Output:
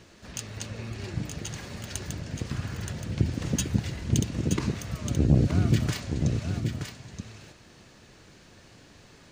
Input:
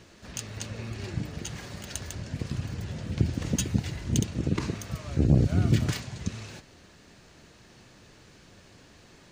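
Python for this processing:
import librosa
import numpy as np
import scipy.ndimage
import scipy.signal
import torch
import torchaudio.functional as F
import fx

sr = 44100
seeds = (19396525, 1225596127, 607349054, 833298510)

y = fx.peak_eq(x, sr, hz=1400.0, db=7.0, octaves=1.1, at=(2.5, 2.93))
y = y + 10.0 ** (-6.5 / 20.0) * np.pad(y, (int(924 * sr / 1000.0), 0))[:len(y)]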